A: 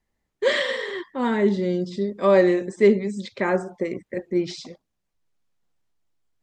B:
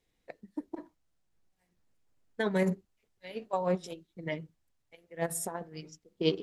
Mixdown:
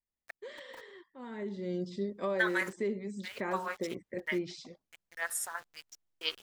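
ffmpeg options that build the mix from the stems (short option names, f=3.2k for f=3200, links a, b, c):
-filter_complex "[0:a]alimiter=limit=-15dB:level=0:latency=1:release=356,volume=-9.5dB,afade=t=in:st=1.24:d=0.55:silence=0.251189[a];[1:a]highpass=f=1.4k:t=q:w=3,aeval=exprs='val(0)*gte(abs(val(0)),0.00316)':c=same,volume=0.5dB[b];[a][b]amix=inputs=2:normalize=0"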